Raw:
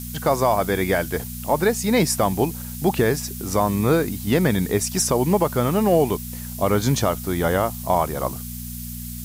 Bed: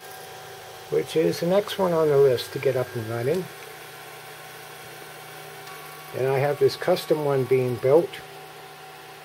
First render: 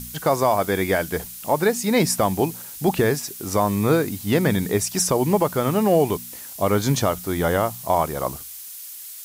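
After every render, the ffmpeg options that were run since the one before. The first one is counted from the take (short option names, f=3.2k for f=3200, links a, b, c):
-af "bandreject=f=60:t=h:w=4,bandreject=f=120:t=h:w=4,bandreject=f=180:t=h:w=4,bandreject=f=240:t=h:w=4"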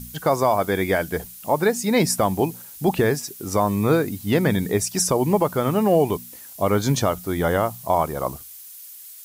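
-af "afftdn=nr=6:nf=-38"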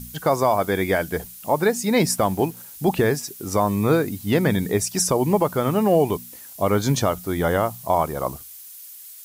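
-filter_complex "[0:a]asettb=1/sr,asplit=3[a][b][c];[a]atrim=end=2.064[d];[b]atrim=start=2.06:end=2.57,asetpts=PTS-STARTPTS,afade=t=in:d=0.004:c=qsin,afade=t=out:st=0.506:d=0.004:c=qsin,aeval=exprs='sgn(val(0))*max(abs(val(0))-0.00447,0)':c=same[e];[c]atrim=start=2.566[f];[d][e]acrossfade=d=0.004:c1=hsin:c2=qsin[g];[g][f]acrossfade=d=0.004:c1=qsin:c2=hsin"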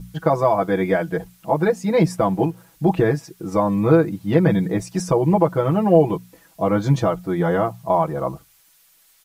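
-af "lowpass=f=1.2k:p=1,aecho=1:1:6.1:0.98"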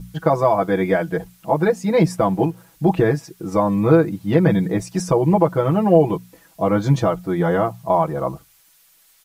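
-af "volume=1dB,alimiter=limit=-3dB:level=0:latency=1"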